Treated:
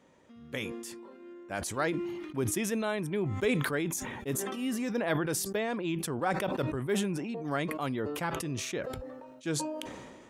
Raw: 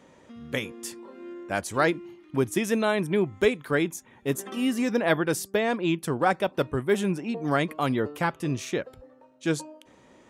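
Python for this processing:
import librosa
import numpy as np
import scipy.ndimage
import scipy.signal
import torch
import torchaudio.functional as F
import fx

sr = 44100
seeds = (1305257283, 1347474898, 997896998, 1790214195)

y = fx.sustainer(x, sr, db_per_s=33.0)
y = F.gain(torch.from_numpy(y), -8.0).numpy()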